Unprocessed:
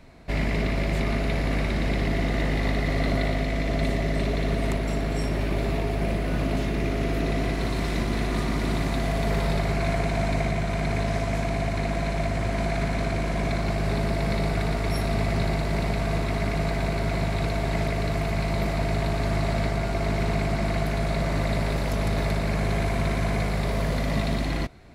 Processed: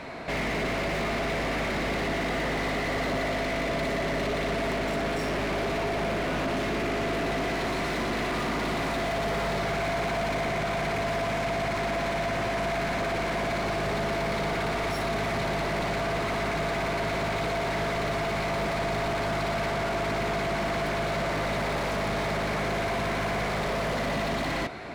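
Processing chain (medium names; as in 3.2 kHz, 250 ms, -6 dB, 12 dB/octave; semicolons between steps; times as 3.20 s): overdrive pedal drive 35 dB, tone 1.9 kHz, clips at -12.5 dBFS; trim -8.5 dB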